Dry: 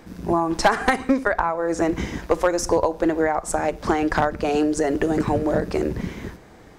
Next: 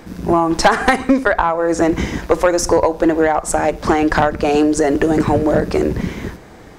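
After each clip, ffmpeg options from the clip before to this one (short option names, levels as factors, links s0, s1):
-af "acontrast=86"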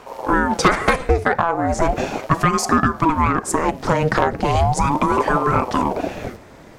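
-af "aeval=exprs='val(0)*sin(2*PI*450*n/s+450*0.65/0.37*sin(2*PI*0.37*n/s))':c=same"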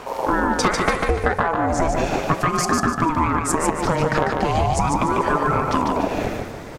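-filter_complex "[0:a]acompressor=threshold=0.0501:ratio=3,asplit=2[s0][s1];[s1]aecho=0:1:147|294|441|588:0.631|0.202|0.0646|0.0207[s2];[s0][s2]amix=inputs=2:normalize=0,volume=2"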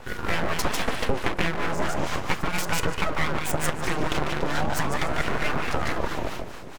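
-filter_complex "[0:a]acrossover=split=480[s0][s1];[s0]aeval=exprs='val(0)*(1-0.7/2+0.7/2*cos(2*PI*4.5*n/s))':c=same[s2];[s1]aeval=exprs='val(0)*(1-0.7/2-0.7/2*cos(2*PI*4.5*n/s))':c=same[s3];[s2][s3]amix=inputs=2:normalize=0,aeval=exprs='abs(val(0))':c=same"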